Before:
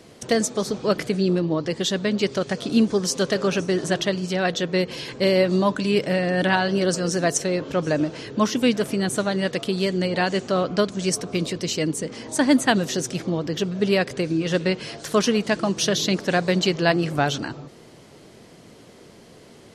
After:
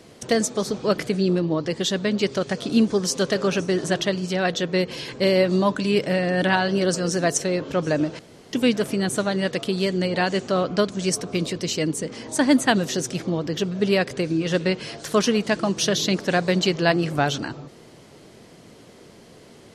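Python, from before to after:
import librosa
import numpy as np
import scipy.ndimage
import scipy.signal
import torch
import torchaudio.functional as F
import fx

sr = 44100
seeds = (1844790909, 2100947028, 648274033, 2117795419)

y = fx.edit(x, sr, fx.room_tone_fill(start_s=8.19, length_s=0.34), tone=tone)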